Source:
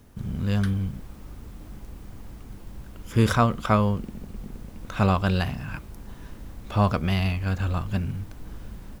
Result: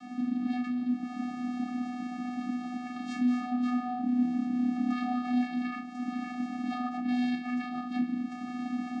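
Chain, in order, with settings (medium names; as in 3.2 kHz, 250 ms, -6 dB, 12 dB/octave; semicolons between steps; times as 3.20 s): overdrive pedal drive 26 dB, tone 3.2 kHz, clips at -7.5 dBFS; 2.95–5.39 s: flutter echo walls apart 4.7 m, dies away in 0.44 s; compression 8:1, threshold -33 dBFS, peak gain reduction 23.5 dB; high-pass 180 Hz; reverberation RT60 0.30 s, pre-delay 5 ms, DRR -2.5 dB; vocoder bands 8, square 247 Hz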